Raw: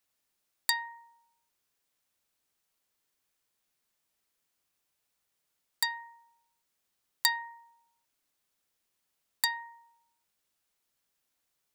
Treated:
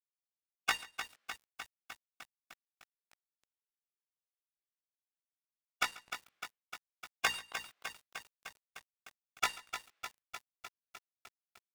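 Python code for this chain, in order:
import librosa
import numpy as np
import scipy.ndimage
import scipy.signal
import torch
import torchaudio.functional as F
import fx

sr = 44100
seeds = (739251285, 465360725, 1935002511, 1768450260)

y = fx.highpass(x, sr, hz=fx.steps((0.0, 170.0), (6.08, 49.0), (7.52, 220.0)), slope=6)
y = fx.spec_gate(y, sr, threshold_db=-30, keep='weak')
y = scipy.signal.sosfilt(scipy.signal.butter(2, 1800.0, 'lowpass', fs=sr, output='sos'), y)
y = fx.tilt_shelf(y, sr, db=-8.5, hz=1100.0)
y = fx.hum_notches(y, sr, base_hz=60, count=8)
y = fx.leveller(y, sr, passes=5)
y = fx.doubler(y, sr, ms=18.0, db=-5.0)
y = y + 10.0 ** (-20.5 / 20.0) * np.pad(y, (int(138 * sr / 1000.0), 0))[:len(y)]
y = fx.echo_crushed(y, sr, ms=303, feedback_pct=80, bits=11, wet_db=-8.5)
y = y * 10.0 ** (16.5 / 20.0)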